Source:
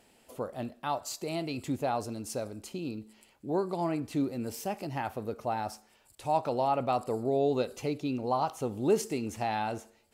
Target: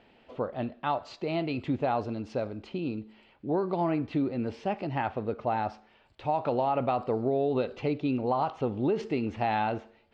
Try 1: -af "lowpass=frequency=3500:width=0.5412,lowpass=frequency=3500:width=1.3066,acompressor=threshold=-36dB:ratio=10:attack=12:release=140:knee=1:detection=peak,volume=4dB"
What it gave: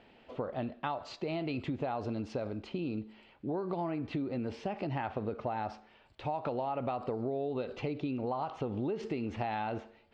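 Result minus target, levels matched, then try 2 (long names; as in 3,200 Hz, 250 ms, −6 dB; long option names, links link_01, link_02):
downward compressor: peak gain reduction +7.5 dB
-af "lowpass=frequency=3500:width=0.5412,lowpass=frequency=3500:width=1.3066,acompressor=threshold=-27.5dB:ratio=10:attack=12:release=140:knee=1:detection=peak,volume=4dB"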